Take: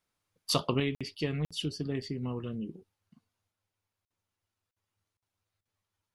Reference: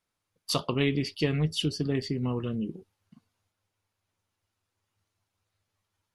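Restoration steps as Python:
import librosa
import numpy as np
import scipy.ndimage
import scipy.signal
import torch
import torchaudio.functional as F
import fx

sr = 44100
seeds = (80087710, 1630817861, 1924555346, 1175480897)

y = fx.fix_interpolate(x, sr, at_s=(0.95, 1.45, 4.05, 4.71, 5.17), length_ms=56.0)
y = fx.fix_interpolate(y, sr, at_s=(5.61,), length_ms=42.0)
y = fx.fix_level(y, sr, at_s=0.8, step_db=5.5)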